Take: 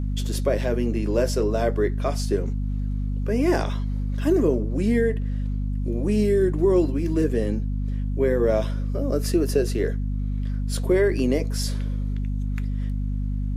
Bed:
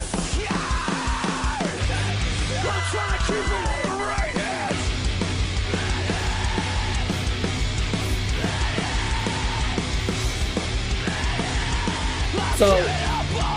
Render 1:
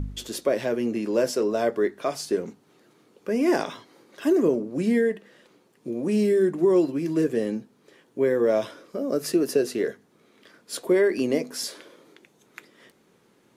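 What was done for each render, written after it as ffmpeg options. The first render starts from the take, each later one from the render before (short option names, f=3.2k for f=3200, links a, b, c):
-af "bandreject=f=50:t=h:w=4,bandreject=f=100:t=h:w=4,bandreject=f=150:t=h:w=4,bandreject=f=200:t=h:w=4,bandreject=f=250:t=h:w=4"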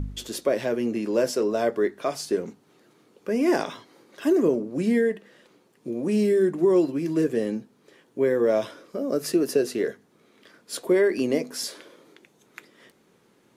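-af anull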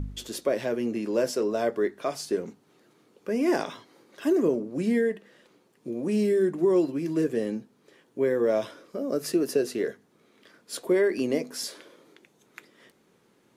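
-af "volume=-2.5dB"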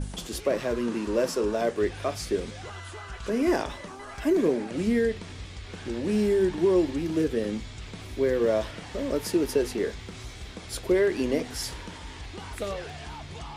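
-filter_complex "[1:a]volume=-16dB[a];[0:a][a]amix=inputs=2:normalize=0"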